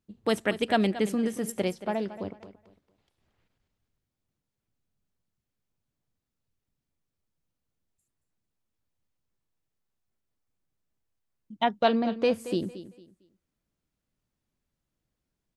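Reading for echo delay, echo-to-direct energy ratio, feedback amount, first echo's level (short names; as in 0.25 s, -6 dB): 0.227 s, -13.5 dB, 27%, -14.0 dB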